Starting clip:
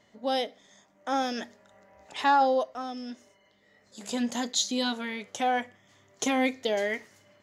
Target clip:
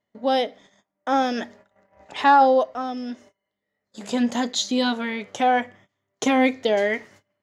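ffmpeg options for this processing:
ffmpeg -i in.wav -af "agate=range=-24dB:threshold=-55dB:ratio=16:detection=peak,highshelf=frequency=4800:gain=-11.5,volume=7.5dB" out.wav

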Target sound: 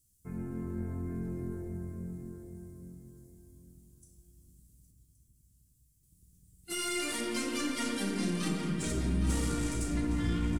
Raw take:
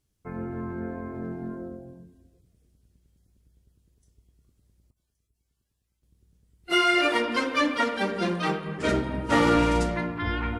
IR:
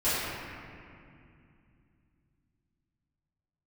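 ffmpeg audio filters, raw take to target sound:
-filter_complex "[0:a]firequalizer=gain_entry='entry(150,0);entry(580,-16);entry(7800,13)':delay=0.05:min_phase=1,alimiter=level_in=1dB:limit=-24dB:level=0:latency=1:release=35,volume=-1dB,aeval=exprs='(tanh(22.4*val(0)+0.2)-tanh(0.2))/22.4':channel_layout=same,asplit=2[link_01][link_02];[link_02]adelay=813,lowpass=frequency=3900:poles=1,volume=-7.5dB,asplit=2[link_03][link_04];[link_04]adelay=813,lowpass=frequency=3900:poles=1,volume=0.27,asplit=2[link_05][link_06];[link_06]adelay=813,lowpass=frequency=3900:poles=1,volume=0.27[link_07];[link_01][link_03][link_05][link_07]amix=inputs=4:normalize=0,asplit=2[link_08][link_09];[1:a]atrim=start_sample=2205,adelay=35[link_10];[link_09][link_10]afir=irnorm=-1:irlink=0,volume=-15.5dB[link_11];[link_08][link_11]amix=inputs=2:normalize=0"

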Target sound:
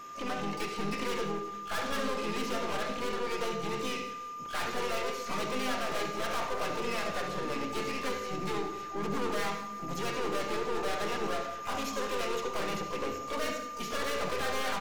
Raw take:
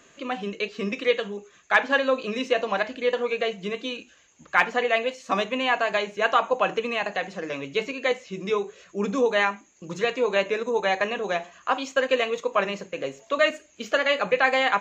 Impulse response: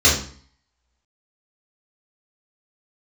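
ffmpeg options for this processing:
-filter_complex "[0:a]aeval=exprs='(tanh(56.2*val(0)+0.45)-tanh(0.45))/56.2':channel_layout=same,asplit=3[link_01][link_02][link_03];[link_02]asetrate=35002,aresample=44100,atempo=1.25992,volume=-4dB[link_04];[link_03]asetrate=88200,aresample=44100,atempo=0.5,volume=-8dB[link_05];[link_01][link_04][link_05]amix=inputs=3:normalize=0,aeval=exprs='val(0)+0.00708*sin(2*PI*1200*n/s)':channel_layout=same,aecho=1:1:180|360|540|720|900:0.168|0.089|0.0472|0.025|0.0132,asplit=2[link_06][link_07];[1:a]atrim=start_sample=2205,adelay=62[link_08];[link_07][link_08]afir=irnorm=-1:irlink=0,volume=-28.5dB[link_09];[link_06][link_09]amix=inputs=2:normalize=0"

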